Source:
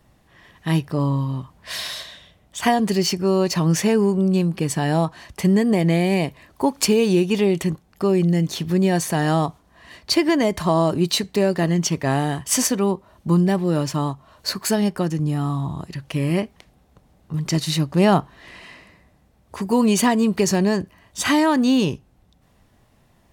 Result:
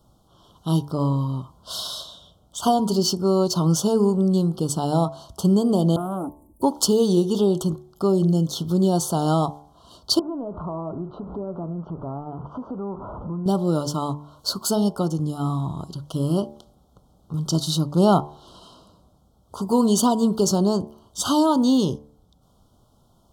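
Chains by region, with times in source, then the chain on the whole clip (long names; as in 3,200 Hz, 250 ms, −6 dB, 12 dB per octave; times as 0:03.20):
0:05.96–0:06.62: inverse Chebyshev band-stop filter 880–4,900 Hz, stop band 50 dB + comb filter 3.5 ms, depth 77% + saturating transformer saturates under 870 Hz
0:10.19–0:13.46: converter with a step at zero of −27.5 dBFS + low-pass filter 1,300 Hz 24 dB per octave + downward compressor 3 to 1, threshold −30 dBFS
whole clip: Chebyshev band-stop filter 1,400–3,100 Hz, order 4; hum removal 73.4 Hz, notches 15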